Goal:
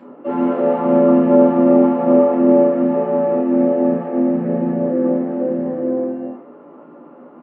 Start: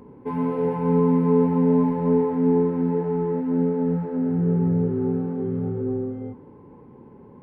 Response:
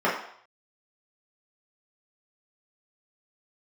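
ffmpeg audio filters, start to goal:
-filter_complex "[0:a]asplit=3[a][b][c];[b]asetrate=37084,aresample=44100,atempo=1.18921,volume=-7dB[d];[c]asetrate=58866,aresample=44100,atempo=0.749154,volume=-1dB[e];[a][d][e]amix=inputs=3:normalize=0[f];[1:a]atrim=start_sample=2205,asetrate=61740,aresample=44100[g];[f][g]afir=irnorm=-1:irlink=0,volume=-10.5dB"

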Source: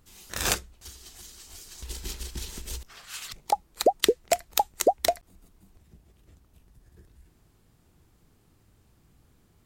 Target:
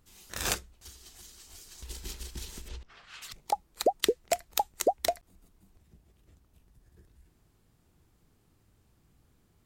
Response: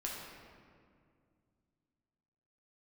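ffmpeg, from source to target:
-filter_complex "[0:a]asplit=3[a][b][c];[a]afade=t=out:st=2.67:d=0.02[d];[b]lowpass=3.4k,afade=t=in:st=2.67:d=0.02,afade=t=out:st=3.21:d=0.02[e];[c]afade=t=in:st=3.21:d=0.02[f];[d][e][f]amix=inputs=3:normalize=0,volume=-4.5dB"

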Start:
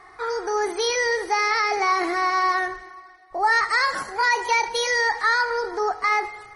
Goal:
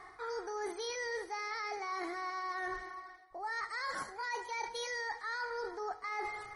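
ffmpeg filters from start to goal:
-af "bandreject=f=2.7k:w=7.1,areverse,acompressor=threshold=-32dB:ratio=10,areverse,volume=-4dB"

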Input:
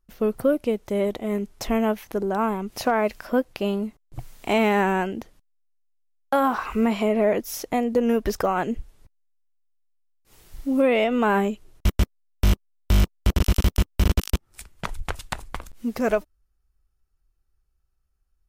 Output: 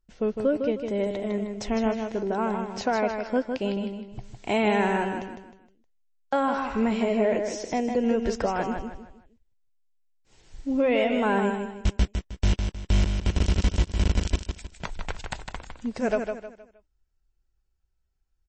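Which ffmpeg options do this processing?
-filter_complex "[0:a]bandreject=f=1.2k:w=6.2,asplit=2[a][b];[b]aecho=0:1:156|312|468|624:0.501|0.175|0.0614|0.0215[c];[a][c]amix=inputs=2:normalize=0,volume=-3dB" -ar 24000 -c:a libmp3lame -b:a 32k

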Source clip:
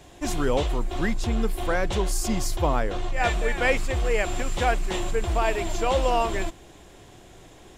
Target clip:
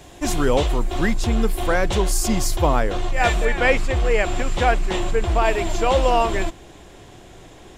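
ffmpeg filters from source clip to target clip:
-af "asetnsamples=n=441:p=0,asendcmd='3.45 highshelf g -10;5.45 highshelf g -5',highshelf=f=7.8k:g=2.5,volume=5dB"

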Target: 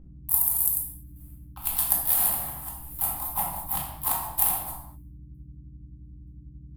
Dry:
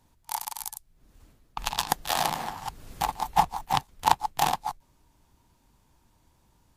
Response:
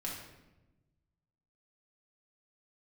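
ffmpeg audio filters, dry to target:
-filter_complex "[0:a]agate=range=-59dB:threshold=-56dB:ratio=16:detection=peak,acrossover=split=330|1300|5000[a][b][c][d];[d]acrusher=bits=3:mode=log:mix=0:aa=0.000001[e];[a][b][c][e]amix=inputs=4:normalize=0,aexciter=amount=14.8:drive=9.2:freq=9.4k,aeval=exprs='val(0)+0.0141*(sin(2*PI*60*n/s)+sin(2*PI*2*60*n/s)/2+sin(2*PI*3*60*n/s)/3+sin(2*PI*4*60*n/s)/4+sin(2*PI*5*60*n/s)/5)':c=same,asplit=4[f][g][h][i];[g]asetrate=35002,aresample=44100,atempo=1.25992,volume=-13dB[j];[h]asetrate=37084,aresample=44100,atempo=1.18921,volume=-17dB[k];[i]asetrate=52444,aresample=44100,atempo=0.840896,volume=-7dB[l];[f][j][k][l]amix=inputs=4:normalize=0[m];[1:a]atrim=start_sample=2205,afade=t=out:st=0.31:d=0.01,atrim=end_sample=14112[n];[m][n]afir=irnorm=-1:irlink=0,volume=-11dB"

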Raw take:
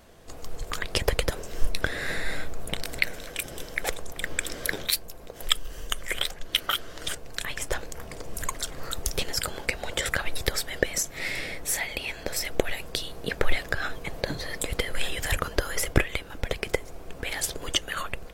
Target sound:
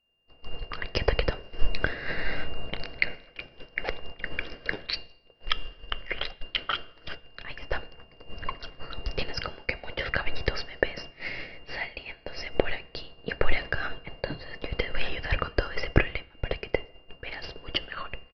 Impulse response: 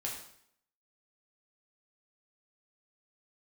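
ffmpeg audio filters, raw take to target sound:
-filter_complex "[0:a]aeval=exprs='val(0)+0.01*sin(2*PI*2800*n/s)':c=same,agate=range=-33dB:threshold=-25dB:ratio=3:detection=peak,equalizer=f=3.6k:w=5:g=-12.5,aresample=11025,aresample=44100,asplit=2[a][b];[1:a]atrim=start_sample=2205[c];[b][c]afir=irnorm=-1:irlink=0,volume=-18.5dB[d];[a][d]amix=inputs=2:normalize=0"

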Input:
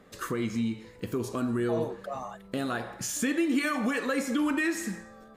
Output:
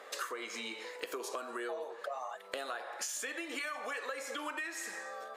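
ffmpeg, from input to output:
-af "highpass=f=500:w=0.5412,highpass=f=500:w=1.3066,highshelf=f=12k:g=-7,acompressor=threshold=-46dB:ratio=12,volume=9.5dB"

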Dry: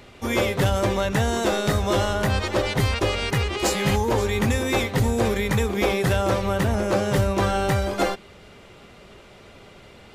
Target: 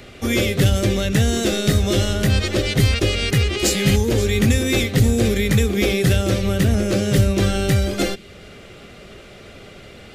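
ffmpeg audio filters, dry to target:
-filter_complex "[0:a]equalizer=f=940:t=o:w=0.36:g=-11.5,acrossover=split=440|2000[a][b][c];[b]acompressor=threshold=-40dB:ratio=6[d];[a][d][c]amix=inputs=3:normalize=0,volume=6.5dB"

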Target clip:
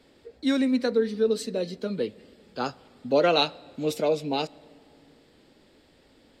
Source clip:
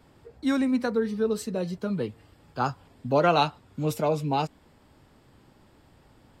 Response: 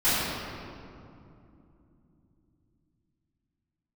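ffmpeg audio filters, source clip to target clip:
-filter_complex "[0:a]equalizer=f=125:t=o:w=1:g=-7,equalizer=f=250:t=o:w=1:g=6,equalizer=f=500:t=o:w=1:g=9,equalizer=f=1k:t=o:w=1:g=-4,equalizer=f=2k:t=o:w=1:g=6,equalizer=f=4k:t=o:w=1:g=11,equalizer=f=8k:t=o:w=1:g=4,asplit=2[a][b];[1:a]atrim=start_sample=2205[c];[b][c]afir=irnorm=-1:irlink=0,volume=-39.5dB[d];[a][d]amix=inputs=2:normalize=0,volume=-6dB"

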